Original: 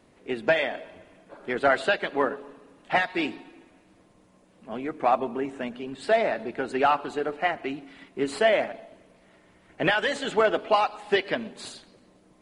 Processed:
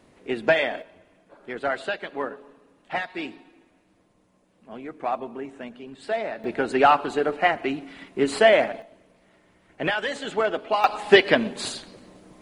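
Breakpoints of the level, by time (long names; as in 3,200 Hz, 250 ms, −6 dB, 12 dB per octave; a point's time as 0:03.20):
+2.5 dB
from 0:00.82 −5 dB
from 0:06.44 +5 dB
from 0:08.82 −2 dB
from 0:10.84 +9 dB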